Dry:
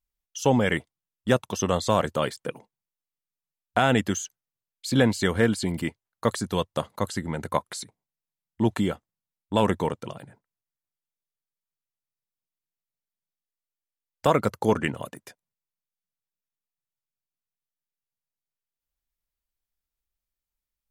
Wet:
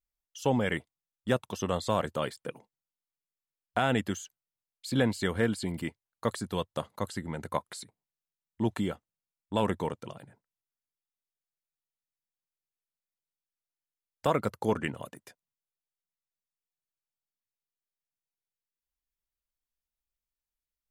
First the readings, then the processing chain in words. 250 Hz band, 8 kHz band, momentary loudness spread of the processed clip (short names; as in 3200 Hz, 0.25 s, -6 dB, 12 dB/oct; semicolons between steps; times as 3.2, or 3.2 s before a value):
-6.0 dB, -9.0 dB, 16 LU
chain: dynamic EQ 6100 Hz, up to -6 dB, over -53 dBFS, Q 4; gain -6 dB